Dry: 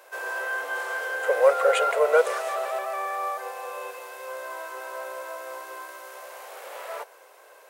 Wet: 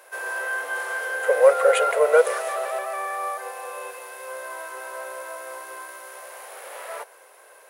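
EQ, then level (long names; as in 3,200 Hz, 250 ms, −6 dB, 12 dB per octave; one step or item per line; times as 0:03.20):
parametric band 1,800 Hz +3 dB 0.63 octaves
parametric band 10,000 Hz +13.5 dB 0.2 octaves
dynamic equaliser 510 Hz, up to +4 dB, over −35 dBFS, Q 3
0.0 dB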